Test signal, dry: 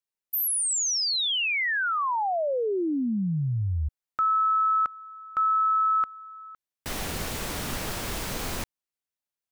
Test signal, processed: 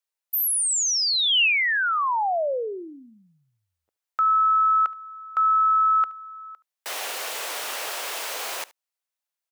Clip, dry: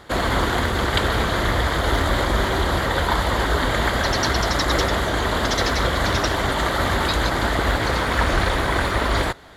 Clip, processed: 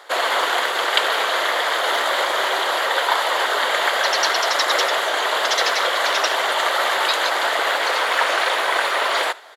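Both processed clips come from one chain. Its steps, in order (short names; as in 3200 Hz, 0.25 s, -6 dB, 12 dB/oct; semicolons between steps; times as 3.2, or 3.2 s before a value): HPF 500 Hz 24 dB/oct; dynamic EQ 2800 Hz, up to +5 dB, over -43 dBFS, Q 3; echo 73 ms -21.5 dB; gain +3 dB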